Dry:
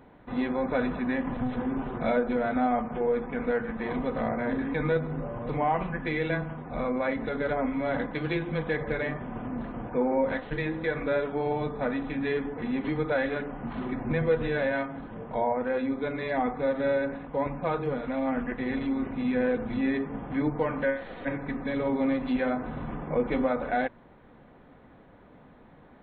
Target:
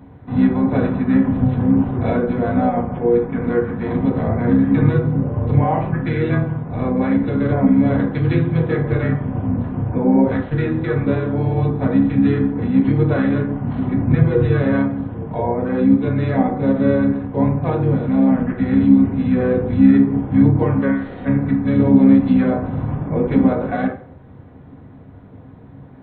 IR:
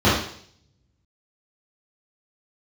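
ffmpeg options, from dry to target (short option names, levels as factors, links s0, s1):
-filter_complex "[0:a]asplit=2[s0][s1];[s1]aemphasis=mode=reproduction:type=bsi[s2];[1:a]atrim=start_sample=2205,asetrate=57330,aresample=44100[s3];[s2][s3]afir=irnorm=-1:irlink=0,volume=0.0708[s4];[s0][s4]amix=inputs=2:normalize=0,asplit=2[s5][s6];[s6]asetrate=33038,aresample=44100,atempo=1.33484,volume=0.562[s7];[s5][s7]amix=inputs=2:normalize=0,volume=1.12"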